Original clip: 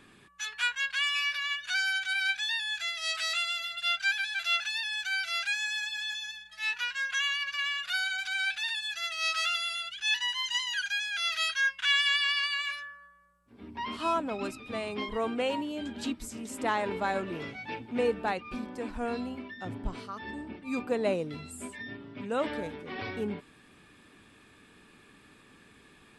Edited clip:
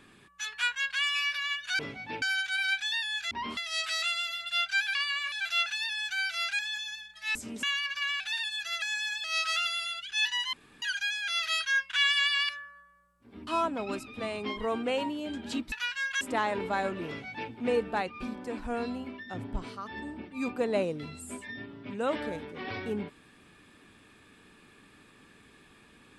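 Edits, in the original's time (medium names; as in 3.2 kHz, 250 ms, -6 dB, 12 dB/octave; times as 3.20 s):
5.53–5.95 s: move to 9.13 s
6.71–7.20 s: swap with 16.24–16.52 s
7.77–8.51 s: delete
10.42–10.71 s: room tone
12.38–12.75 s: move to 4.26 s
13.73–13.99 s: move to 2.88 s
17.38–17.81 s: copy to 1.79 s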